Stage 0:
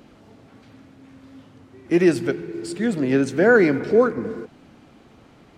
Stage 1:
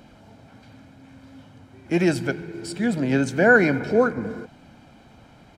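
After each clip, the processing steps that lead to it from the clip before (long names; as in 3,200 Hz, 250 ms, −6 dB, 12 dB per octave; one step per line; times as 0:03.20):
comb filter 1.3 ms, depth 49%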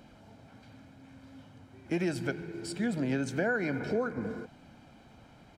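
downward compressor 6 to 1, threshold −21 dBFS, peak gain reduction 11 dB
level −5.5 dB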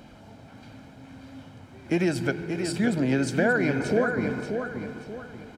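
repeating echo 582 ms, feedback 35%, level −6.5 dB
level +6.5 dB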